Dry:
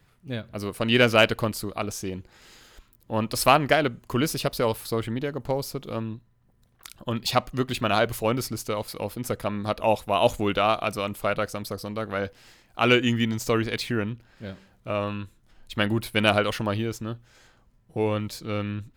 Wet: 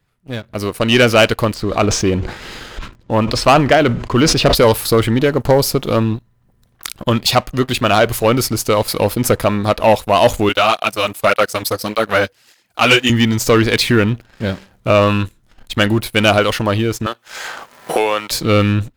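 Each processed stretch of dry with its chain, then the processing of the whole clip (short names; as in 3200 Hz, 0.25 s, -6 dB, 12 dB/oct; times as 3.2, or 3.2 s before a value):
1.54–4.55 G.711 law mismatch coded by mu + air absorption 130 m + sustainer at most 89 dB/s
10.49–13.1 transient shaper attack +1 dB, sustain -7 dB + tilt +2 dB/oct + tape flanging out of phase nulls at 1.7 Hz, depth 6.4 ms
17.06–18.31 HPF 700 Hz + three-band squash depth 100%
whole clip: dynamic EQ 180 Hz, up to -3 dB, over -37 dBFS, Q 1.3; AGC gain up to 12 dB; sample leveller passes 2; gain -1 dB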